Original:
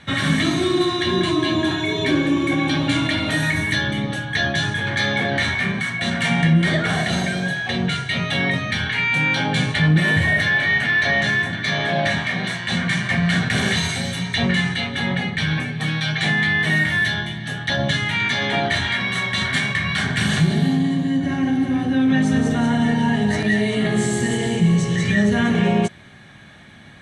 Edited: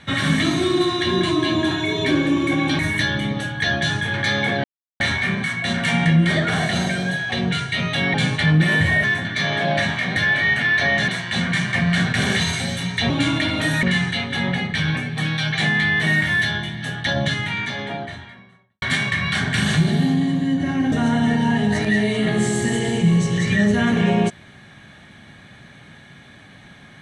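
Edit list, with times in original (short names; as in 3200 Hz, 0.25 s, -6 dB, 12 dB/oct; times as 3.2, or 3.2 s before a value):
2.79–3.52 move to 14.46
5.37 insert silence 0.36 s
8.51–9.5 cut
10.4–11.32 move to 12.44
17.64–19.45 studio fade out
21.55–22.5 cut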